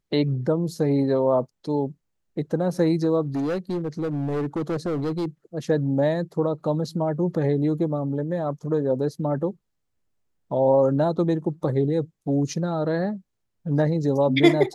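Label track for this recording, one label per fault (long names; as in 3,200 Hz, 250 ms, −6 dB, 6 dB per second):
3.270000	5.260000	clipping −22.5 dBFS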